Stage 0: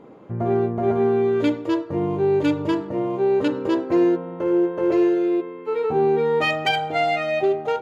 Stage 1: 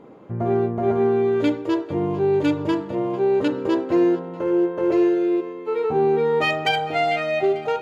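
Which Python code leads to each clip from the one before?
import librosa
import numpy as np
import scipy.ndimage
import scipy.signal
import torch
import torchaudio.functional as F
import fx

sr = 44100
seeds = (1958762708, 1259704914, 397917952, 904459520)

y = fx.echo_thinned(x, sr, ms=446, feedback_pct=50, hz=420.0, wet_db=-18)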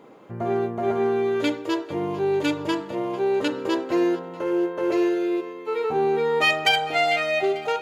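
y = fx.tilt_eq(x, sr, slope=2.5)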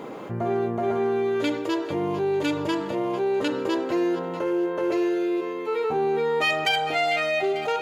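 y = fx.env_flatten(x, sr, amount_pct=50)
y = F.gain(torch.from_numpy(y), -4.5).numpy()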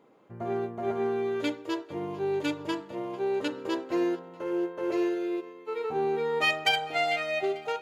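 y = fx.upward_expand(x, sr, threshold_db=-36.0, expansion=2.5)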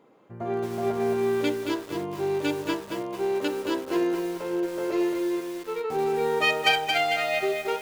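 y = fx.echo_crushed(x, sr, ms=224, feedback_pct=35, bits=7, wet_db=-4.5)
y = F.gain(torch.from_numpy(y), 2.0).numpy()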